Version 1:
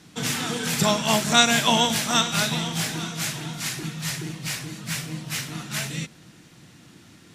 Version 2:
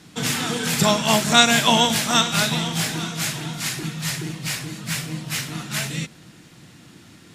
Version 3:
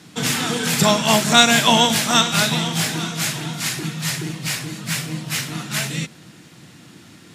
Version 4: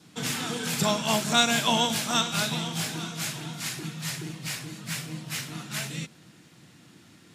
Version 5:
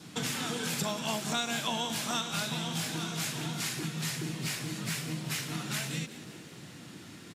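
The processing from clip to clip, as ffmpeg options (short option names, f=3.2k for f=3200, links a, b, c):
-af "bandreject=f=5.9k:w=28,volume=3dB"
-filter_complex "[0:a]highpass=90,asplit=2[a][b];[b]aeval=exprs='0.944*sin(PI/2*1.58*val(0)/0.944)':c=same,volume=-11dB[c];[a][c]amix=inputs=2:normalize=0,volume=-2dB"
-af "adynamicequalizer=threshold=0.00708:dfrequency=1900:dqfactor=6.2:tfrequency=1900:tqfactor=6.2:attack=5:release=100:ratio=0.375:range=2.5:mode=cutabove:tftype=bell,volume=-9dB"
-filter_complex "[0:a]acompressor=threshold=-38dB:ratio=4,asplit=6[a][b][c][d][e][f];[b]adelay=186,afreqshift=82,volume=-15dB[g];[c]adelay=372,afreqshift=164,volume=-20.4dB[h];[d]adelay=558,afreqshift=246,volume=-25.7dB[i];[e]adelay=744,afreqshift=328,volume=-31.1dB[j];[f]adelay=930,afreqshift=410,volume=-36.4dB[k];[a][g][h][i][j][k]amix=inputs=6:normalize=0,volume=5.5dB"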